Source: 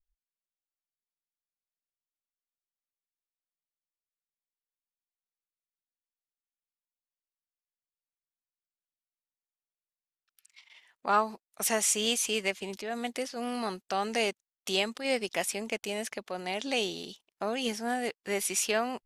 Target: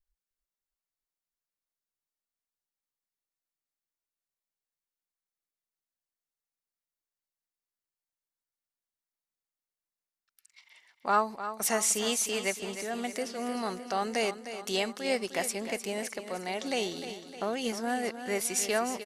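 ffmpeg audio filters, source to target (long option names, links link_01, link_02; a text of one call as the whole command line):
ffmpeg -i in.wav -filter_complex "[0:a]equalizer=frequency=3200:width_type=o:width=0.33:gain=-5.5,bandreject=frequency=2500:width=14,asplit=2[link_01][link_02];[link_02]aecho=0:1:306|612|918|1224|1530|1836:0.282|0.158|0.0884|0.0495|0.0277|0.0155[link_03];[link_01][link_03]amix=inputs=2:normalize=0" out.wav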